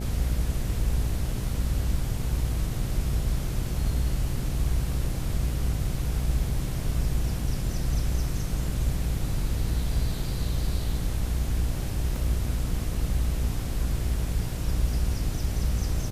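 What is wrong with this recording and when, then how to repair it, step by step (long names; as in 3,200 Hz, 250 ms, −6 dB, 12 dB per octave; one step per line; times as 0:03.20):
mains buzz 60 Hz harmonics 13 −31 dBFS
0:12.16: drop-out 2.8 ms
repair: hum removal 60 Hz, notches 13
repair the gap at 0:12.16, 2.8 ms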